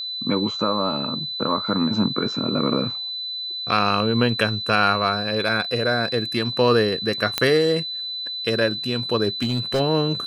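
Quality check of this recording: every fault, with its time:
whine 4 kHz -27 dBFS
7.38 s: pop -4 dBFS
9.42–9.81 s: clipped -17 dBFS

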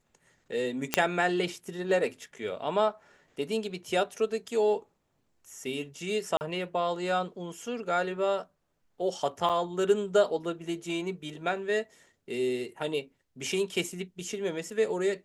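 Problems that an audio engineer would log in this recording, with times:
0.94 s: pop -5 dBFS
6.37–6.41 s: dropout 39 ms
9.49–9.50 s: dropout 6.6 ms

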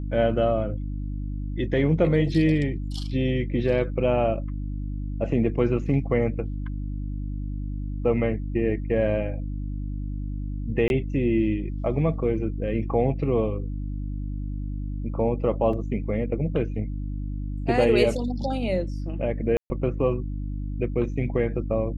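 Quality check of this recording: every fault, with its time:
hum 50 Hz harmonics 6 -30 dBFS
10.88–10.90 s: dropout 21 ms
15.73 s: dropout 3.6 ms
19.57–19.70 s: dropout 130 ms

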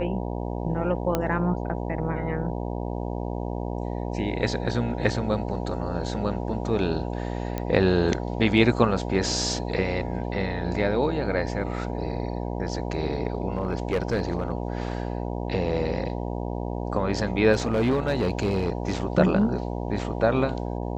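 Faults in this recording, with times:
buzz 60 Hz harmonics 16 -30 dBFS
1.15 s: pop -10 dBFS
7.58 s: pop -15 dBFS
13.57–14.52 s: clipped -19 dBFS
17.52–18.93 s: clipped -18 dBFS

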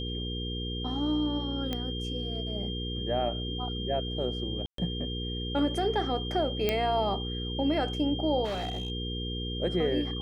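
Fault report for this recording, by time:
hum 60 Hz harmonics 8 -35 dBFS
whine 3.2 kHz -37 dBFS
1.73 s: pop -18 dBFS
4.66–4.78 s: dropout 123 ms
6.69 s: pop -12 dBFS
8.44–8.90 s: clipped -29 dBFS

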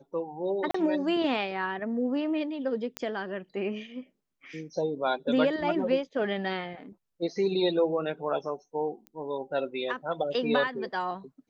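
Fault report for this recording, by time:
0.71–0.74 s: dropout 34 ms
2.97 s: pop -15 dBFS
9.07 s: pop -28 dBFS

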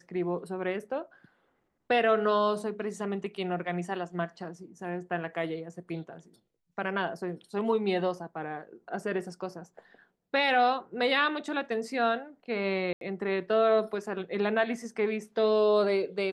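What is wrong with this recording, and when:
12.93–13.01 s: dropout 82 ms

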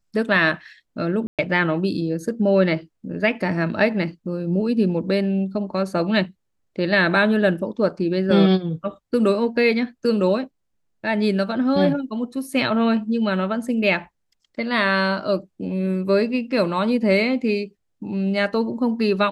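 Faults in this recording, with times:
1.27–1.39 s: dropout 117 ms

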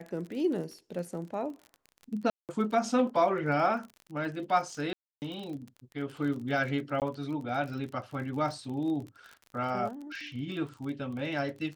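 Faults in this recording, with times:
crackle 34 per s -38 dBFS
2.30–2.49 s: dropout 188 ms
4.93–5.22 s: dropout 289 ms
7.00–7.02 s: dropout 18 ms

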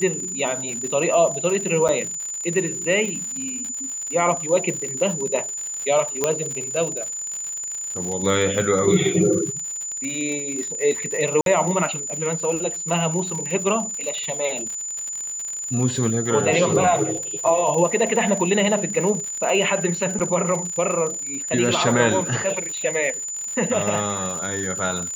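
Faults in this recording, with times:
crackle 90 per s -27 dBFS
whine 7 kHz -27 dBFS
1.88–1.89 s: dropout 7.8 ms
6.24 s: pop -5 dBFS
11.41–11.46 s: dropout 52 ms
20.19–20.20 s: dropout 7.2 ms

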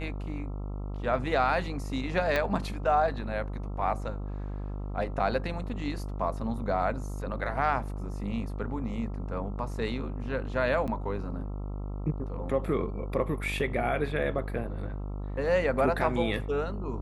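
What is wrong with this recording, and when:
buzz 50 Hz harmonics 27 -35 dBFS
2.36 s: pop -14 dBFS
10.87–10.88 s: dropout 7.8 ms

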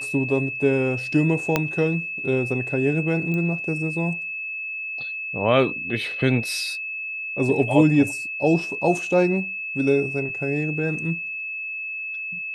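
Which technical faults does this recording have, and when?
whine 2.6 kHz -28 dBFS
1.56 s: pop -5 dBFS
3.34 s: pop -17 dBFS

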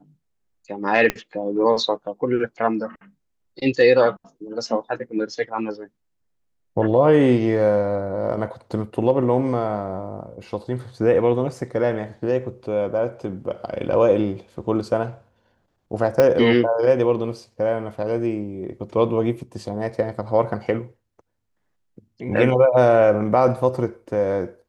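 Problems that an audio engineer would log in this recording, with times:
1.10 s: pop -7 dBFS
16.20 s: pop -5 dBFS

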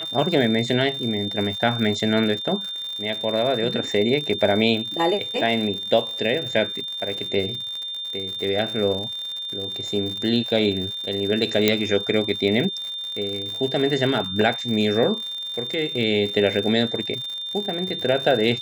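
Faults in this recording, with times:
crackle 110 per s -29 dBFS
whine 3.6 kHz -28 dBFS
11.68 s: pop -2 dBFS

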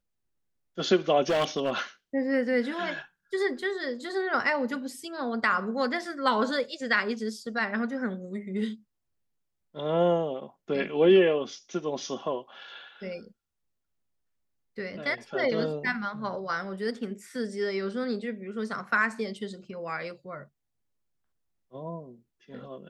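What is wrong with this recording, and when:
1.29–1.79 s: clipped -21.5 dBFS

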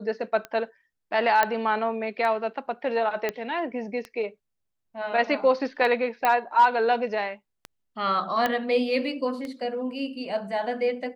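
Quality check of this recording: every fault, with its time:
tick 33 1/3 rpm -20 dBFS
1.43 s: pop -8 dBFS
3.29 s: pop -13 dBFS
6.25 s: pop -10 dBFS
8.46 s: pop -11 dBFS

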